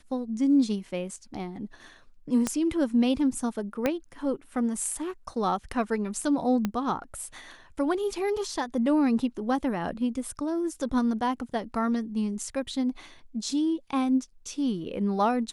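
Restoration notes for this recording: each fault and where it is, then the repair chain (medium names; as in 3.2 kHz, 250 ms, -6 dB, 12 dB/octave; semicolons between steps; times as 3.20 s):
2.47 s: pop -13 dBFS
3.86 s: pop -12 dBFS
6.65 s: pop -14 dBFS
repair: de-click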